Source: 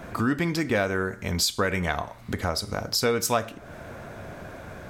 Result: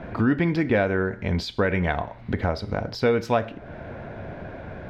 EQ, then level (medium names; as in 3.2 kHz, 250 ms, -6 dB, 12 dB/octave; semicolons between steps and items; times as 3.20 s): distance through air 330 m; peaking EQ 1.2 kHz -7.5 dB 0.34 oct; +4.5 dB